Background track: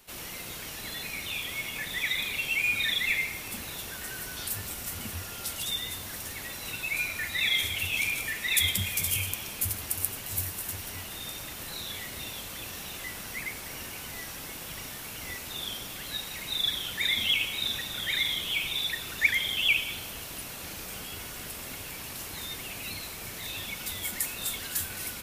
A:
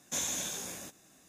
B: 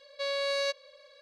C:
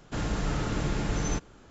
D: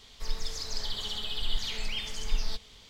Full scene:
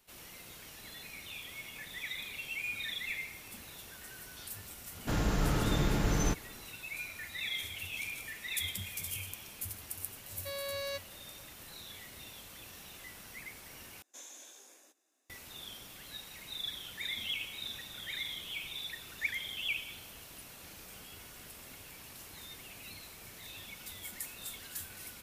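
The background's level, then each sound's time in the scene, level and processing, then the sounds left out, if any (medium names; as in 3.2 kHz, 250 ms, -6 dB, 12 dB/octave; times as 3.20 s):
background track -11 dB
4.95 s: add C -0.5 dB
10.26 s: add B -8.5 dB
14.02 s: replace with A -16.5 dB + steep high-pass 280 Hz
not used: D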